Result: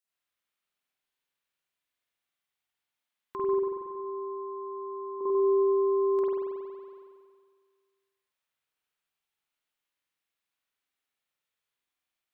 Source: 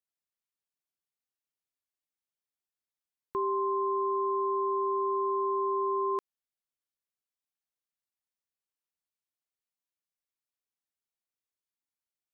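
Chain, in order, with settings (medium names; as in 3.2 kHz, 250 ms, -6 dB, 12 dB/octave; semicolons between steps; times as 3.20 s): 3.54–5.21 s: two resonant band-passes 810 Hz, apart 0.98 oct; spring tank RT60 1.8 s, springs 46 ms, chirp 35 ms, DRR -9.5 dB; tape noise reduction on one side only encoder only; trim -7 dB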